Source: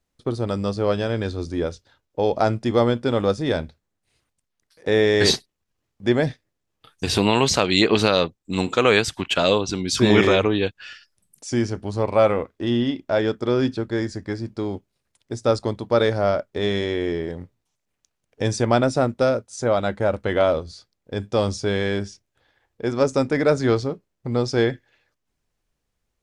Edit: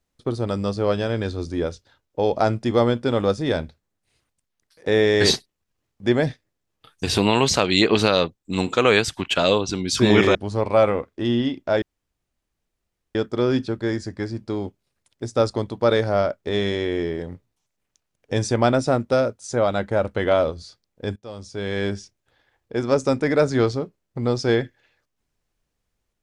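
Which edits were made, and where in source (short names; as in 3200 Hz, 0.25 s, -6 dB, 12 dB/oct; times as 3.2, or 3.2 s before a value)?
10.35–11.77 cut
13.24 insert room tone 1.33 s
21.25–21.94 fade in quadratic, from -18.5 dB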